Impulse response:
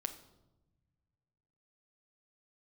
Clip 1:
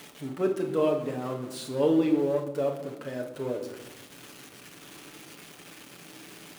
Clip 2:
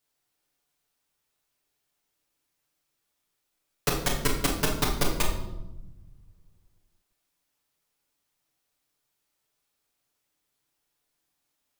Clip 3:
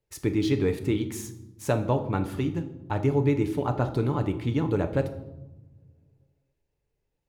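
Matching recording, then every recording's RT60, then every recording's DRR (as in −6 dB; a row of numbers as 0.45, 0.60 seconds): 3; 1.0, 1.0, 1.0 seconds; 2.0, −4.0, 6.5 decibels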